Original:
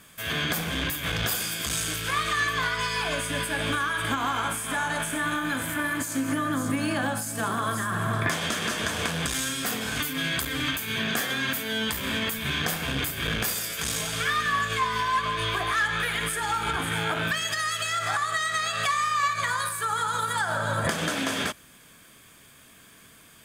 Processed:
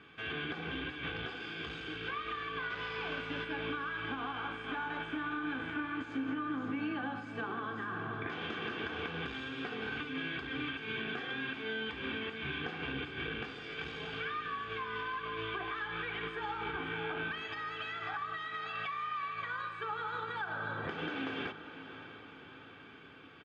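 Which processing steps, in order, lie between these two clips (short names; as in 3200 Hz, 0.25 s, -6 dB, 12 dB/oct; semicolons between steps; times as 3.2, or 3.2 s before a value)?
comb 2.6 ms, depth 54%; compressor 6:1, threshold -33 dBFS, peak gain reduction 14 dB; 2.7–3.45 requantised 6-bit, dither none; speaker cabinet 110–2800 Hz, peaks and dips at 110 Hz -6 dB, 660 Hz -9 dB, 1100 Hz -5 dB, 1900 Hz -8 dB; on a send: diffused feedback echo 0.582 s, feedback 61%, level -12.5 dB; on the sum: gain +1 dB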